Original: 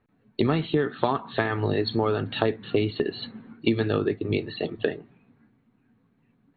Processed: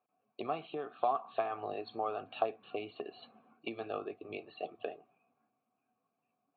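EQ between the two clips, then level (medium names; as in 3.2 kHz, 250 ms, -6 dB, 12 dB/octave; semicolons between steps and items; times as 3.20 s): vowel filter a; +1.0 dB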